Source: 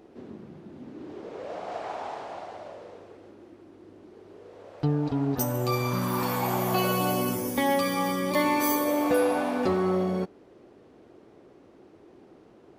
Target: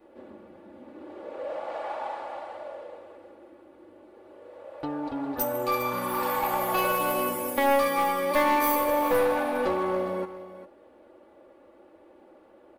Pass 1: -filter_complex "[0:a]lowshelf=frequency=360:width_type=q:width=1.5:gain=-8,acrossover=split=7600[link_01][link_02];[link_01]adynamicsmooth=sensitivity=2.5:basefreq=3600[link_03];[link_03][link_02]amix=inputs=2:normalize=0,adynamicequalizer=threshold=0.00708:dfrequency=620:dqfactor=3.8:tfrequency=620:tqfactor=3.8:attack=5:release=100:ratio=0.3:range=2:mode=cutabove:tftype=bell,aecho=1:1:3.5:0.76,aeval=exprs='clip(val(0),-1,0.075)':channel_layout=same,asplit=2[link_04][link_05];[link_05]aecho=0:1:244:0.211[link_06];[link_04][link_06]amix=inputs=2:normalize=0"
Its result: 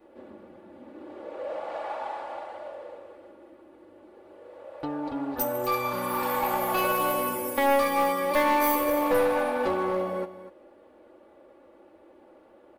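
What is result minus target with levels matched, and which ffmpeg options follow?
echo 161 ms early
-filter_complex "[0:a]lowshelf=frequency=360:width_type=q:width=1.5:gain=-8,acrossover=split=7600[link_01][link_02];[link_01]adynamicsmooth=sensitivity=2.5:basefreq=3600[link_03];[link_03][link_02]amix=inputs=2:normalize=0,adynamicequalizer=threshold=0.00708:dfrequency=620:dqfactor=3.8:tfrequency=620:tqfactor=3.8:attack=5:release=100:ratio=0.3:range=2:mode=cutabove:tftype=bell,aecho=1:1:3.5:0.76,aeval=exprs='clip(val(0),-1,0.075)':channel_layout=same,asplit=2[link_04][link_05];[link_05]aecho=0:1:405:0.211[link_06];[link_04][link_06]amix=inputs=2:normalize=0"

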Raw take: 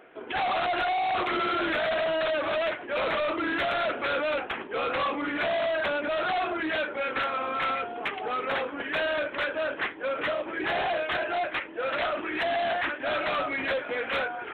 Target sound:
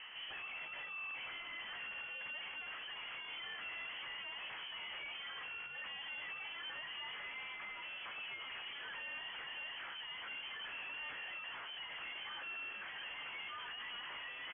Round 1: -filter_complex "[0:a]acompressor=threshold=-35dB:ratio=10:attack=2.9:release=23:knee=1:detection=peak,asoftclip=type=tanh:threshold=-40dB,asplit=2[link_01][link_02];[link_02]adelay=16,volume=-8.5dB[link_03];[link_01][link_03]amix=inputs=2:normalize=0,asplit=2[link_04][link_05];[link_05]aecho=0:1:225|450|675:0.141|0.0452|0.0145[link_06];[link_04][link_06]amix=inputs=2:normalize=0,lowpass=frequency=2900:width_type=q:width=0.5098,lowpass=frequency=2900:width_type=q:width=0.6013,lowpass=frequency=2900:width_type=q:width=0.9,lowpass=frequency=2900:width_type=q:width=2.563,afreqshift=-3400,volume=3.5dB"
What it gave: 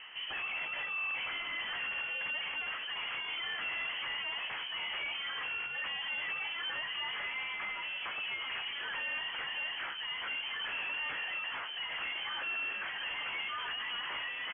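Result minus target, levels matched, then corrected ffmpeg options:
soft clipping: distortion −5 dB
-filter_complex "[0:a]acompressor=threshold=-35dB:ratio=10:attack=2.9:release=23:knee=1:detection=peak,asoftclip=type=tanh:threshold=-49.5dB,asplit=2[link_01][link_02];[link_02]adelay=16,volume=-8.5dB[link_03];[link_01][link_03]amix=inputs=2:normalize=0,asplit=2[link_04][link_05];[link_05]aecho=0:1:225|450|675:0.141|0.0452|0.0145[link_06];[link_04][link_06]amix=inputs=2:normalize=0,lowpass=frequency=2900:width_type=q:width=0.5098,lowpass=frequency=2900:width_type=q:width=0.6013,lowpass=frequency=2900:width_type=q:width=0.9,lowpass=frequency=2900:width_type=q:width=2.563,afreqshift=-3400,volume=3.5dB"

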